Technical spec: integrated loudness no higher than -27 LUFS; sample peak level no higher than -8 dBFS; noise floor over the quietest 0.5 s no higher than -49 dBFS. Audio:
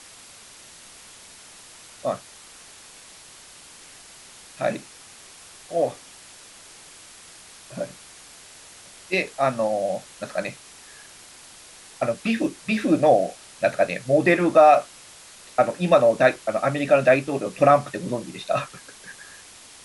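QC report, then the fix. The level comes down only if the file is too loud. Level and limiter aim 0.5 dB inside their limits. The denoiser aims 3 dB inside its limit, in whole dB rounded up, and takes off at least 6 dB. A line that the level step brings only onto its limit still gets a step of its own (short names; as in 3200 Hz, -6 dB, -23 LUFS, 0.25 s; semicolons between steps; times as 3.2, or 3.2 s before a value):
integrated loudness -22.0 LUFS: fail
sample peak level -4.0 dBFS: fail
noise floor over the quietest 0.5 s -47 dBFS: fail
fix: gain -5.5 dB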